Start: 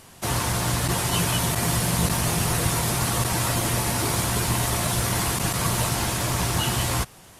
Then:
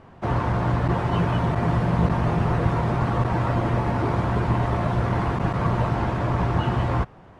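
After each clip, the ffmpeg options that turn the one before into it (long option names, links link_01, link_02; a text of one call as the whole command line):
ffmpeg -i in.wav -af "lowpass=1300,volume=3.5dB" out.wav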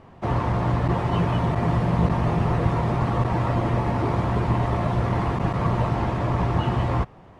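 ffmpeg -i in.wav -af "equalizer=frequency=1500:width=7.1:gain=-6" out.wav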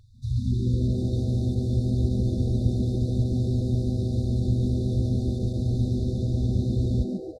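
ffmpeg -i in.wav -filter_complex "[0:a]afftfilt=real='re*(1-between(b*sr/4096,130,3500))':imag='im*(1-between(b*sr/4096,130,3500))':win_size=4096:overlap=0.75,asplit=6[link_01][link_02][link_03][link_04][link_05][link_06];[link_02]adelay=140,afreqshift=130,volume=-6.5dB[link_07];[link_03]adelay=280,afreqshift=260,volume=-13.4dB[link_08];[link_04]adelay=420,afreqshift=390,volume=-20.4dB[link_09];[link_05]adelay=560,afreqshift=520,volume=-27.3dB[link_10];[link_06]adelay=700,afreqshift=650,volume=-34.2dB[link_11];[link_01][link_07][link_08][link_09][link_10][link_11]amix=inputs=6:normalize=0" out.wav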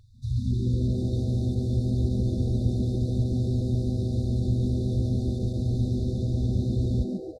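ffmpeg -i in.wav -af "acontrast=86,volume=-8dB" out.wav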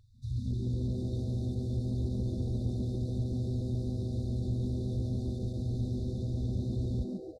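ffmpeg -i in.wav -af "asoftclip=type=tanh:threshold=-15dB,volume=-6.5dB" out.wav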